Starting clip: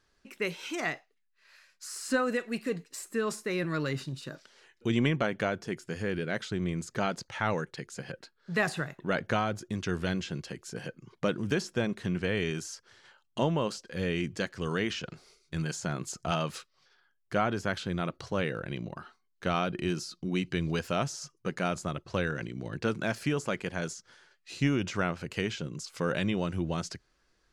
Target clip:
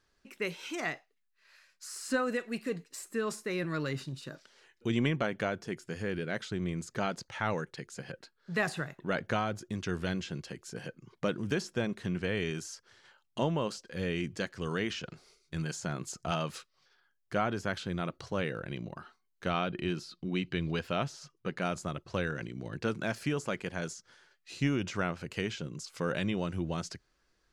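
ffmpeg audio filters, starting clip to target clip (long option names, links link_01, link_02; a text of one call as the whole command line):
ffmpeg -i in.wav -filter_complex "[0:a]asettb=1/sr,asplit=3[link_01][link_02][link_03];[link_01]atrim=end=19.504[link_04];[link_02]atrim=start=19.5:end=21.62,asetpts=PTS-STARTPTS,afade=type=in:duration=0.004:curve=qsin,afade=type=out:start_time=2.116:duration=0.004:curve=qsin,highshelf=frequency=4800:width_type=q:width=1.5:gain=-6.5[link_05];[link_03]atrim=start=21.616[link_06];[link_04][link_05]acrossfade=duration=0.004:curve1=hsin:curve2=qsin[link_07];[link_07][link_06]acrossfade=duration=0.004:curve1=qsin:curve2=hsin,volume=-2.5dB" out.wav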